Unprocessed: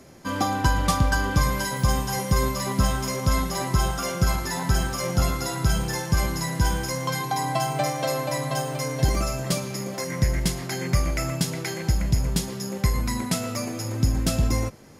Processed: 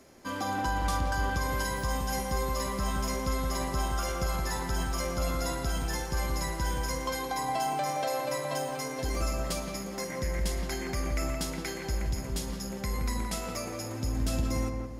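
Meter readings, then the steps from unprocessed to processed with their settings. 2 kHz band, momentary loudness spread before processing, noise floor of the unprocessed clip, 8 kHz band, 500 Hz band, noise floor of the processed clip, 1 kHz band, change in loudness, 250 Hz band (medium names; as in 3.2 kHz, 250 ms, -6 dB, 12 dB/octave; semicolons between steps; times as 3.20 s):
-6.0 dB, 4 LU, -33 dBFS, -7.0 dB, -4.5 dB, -38 dBFS, -4.5 dB, -7.0 dB, -7.5 dB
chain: peaking EQ 130 Hz -9.5 dB 1.1 oct; peak limiter -17 dBFS, peak gain reduction 7.5 dB; crackle 82 per s -53 dBFS; on a send: filtered feedback delay 172 ms, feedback 46%, low-pass 1.4 kHz, level -3 dB; on the sum: trim -5.5 dB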